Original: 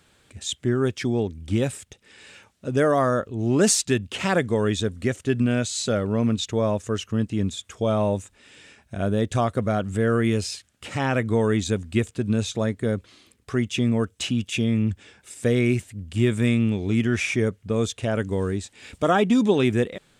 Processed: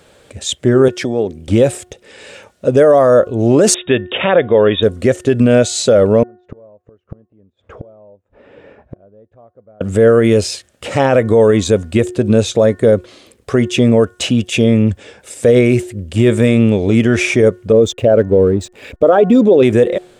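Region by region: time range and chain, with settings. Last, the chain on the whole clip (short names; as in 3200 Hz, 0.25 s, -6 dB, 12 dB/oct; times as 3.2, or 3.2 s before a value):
0.88–1.48 HPF 120 Hz + compressor 3:1, threshold -27 dBFS
3.74–4.83 brick-wall FIR low-pass 3800 Hz + tilt +1.5 dB/oct
6.23–9.81 LPF 1200 Hz + flipped gate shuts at -26 dBFS, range -37 dB
17.72–19.63 formant sharpening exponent 1.5 + LPF 8900 Hz + backlash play -45.5 dBFS
whole clip: bell 540 Hz +12.5 dB 0.91 oct; de-hum 361.4 Hz, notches 5; maximiser +10 dB; gain -1 dB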